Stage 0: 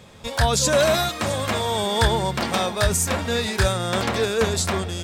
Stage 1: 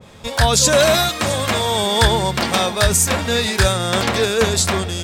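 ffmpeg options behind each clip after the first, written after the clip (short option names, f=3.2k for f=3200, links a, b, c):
-af "adynamicequalizer=threshold=0.0251:dfrequency=1800:dqfactor=0.7:tfrequency=1800:tqfactor=0.7:attack=5:release=100:ratio=0.375:range=1.5:mode=boostabove:tftype=highshelf,volume=4dB"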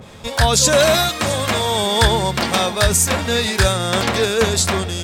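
-af "acompressor=mode=upward:threshold=-34dB:ratio=2.5"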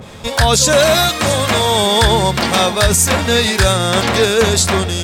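-af "alimiter=level_in=6dB:limit=-1dB:release=50:level=0:latency=1,volume=-1dB"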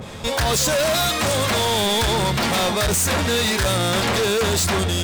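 -af "asoftclip=type=hard:threshold=-18dB"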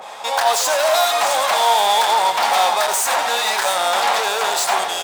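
-af "highpass=f=790:t=q:w=3.7,aecho=1:1:90|684:0.299|0.251"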